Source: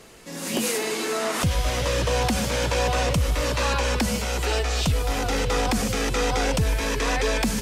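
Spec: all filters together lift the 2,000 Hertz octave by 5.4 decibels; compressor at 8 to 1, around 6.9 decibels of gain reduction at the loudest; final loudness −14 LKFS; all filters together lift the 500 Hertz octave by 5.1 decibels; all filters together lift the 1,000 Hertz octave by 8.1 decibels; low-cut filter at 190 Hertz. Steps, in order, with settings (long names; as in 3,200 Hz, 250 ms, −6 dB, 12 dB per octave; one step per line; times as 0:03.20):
high-pass filter 190 Hz
parametric band 500 Hz +3.5 dB
parametric band 1,000 Hz +8.5 dB
parametric band 2,000 Hz +4 dB
downward compressor 8 to 1, threshold −22 dBFS
level +11.5 dB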